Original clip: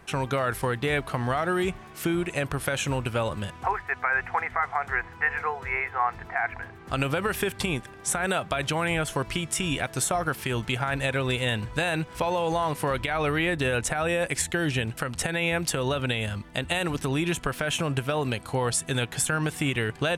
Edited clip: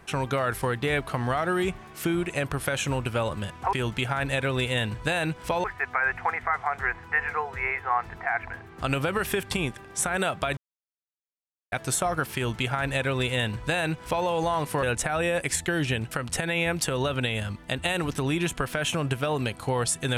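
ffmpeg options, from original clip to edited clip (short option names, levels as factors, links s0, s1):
-filter_complex "[0:a]asplit=6[s0][s1][s2][s3][s4][s5];[s0]atrim=end=3.732[s6];[s1]atrim=start=10.438:end=12.352[s7];[s2]atrim=start=3.728:end=8.66,asetpts=PTS-STARTPTS,afade=t=out:st=4.928:d=0.004:c=hsin[s8];[s3]atrim=start=8.66:end=9.81,asetpts=PTS-STARTPTS,volume=0[s9];[s4]atrim=start=9.81:end=12.922,asetpts=PTS-STARTPTS,afade=t=in:d=0.004:c=hsin[s10];[s5]atrim=start=13.688[s11];[s6][s7]acrossfade=d=0.004:c1=hsin:c2=hsin[s12];[s8][s9][s10]concat=n=3:v=0:a=1[s13];[s12][s13]acrossfade=d=0.004:c1=hsin:c2=hsin[s14];[s14][s11]acrossfade=d=0.004:c1=hsin:c2=hsin"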